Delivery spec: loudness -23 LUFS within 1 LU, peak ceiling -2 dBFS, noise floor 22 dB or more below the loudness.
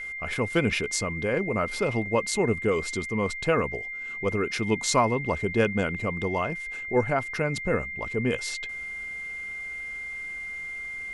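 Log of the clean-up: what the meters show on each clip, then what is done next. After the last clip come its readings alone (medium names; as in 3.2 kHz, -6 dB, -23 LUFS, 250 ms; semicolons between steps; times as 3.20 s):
steady tone 2.1 kHz; tone level -33 dBFS; loudness -27.5 LUFS; peak level -9.0 dBFS; loudness target -23.0 LUFS
-> band-stop 2.1 kHz, Q 30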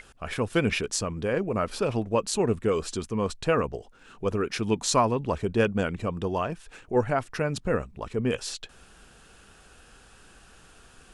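steady tone not found; loudness -27.5 LUFS; peak level -9.5 dBFS; loudness target -23.0 LUFS
-> trim +4.5 dB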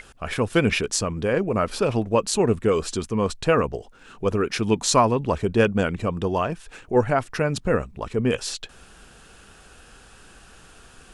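loudness -23.0 LUFS; peak level -5.0 dBFS; noise floor -50 dBFS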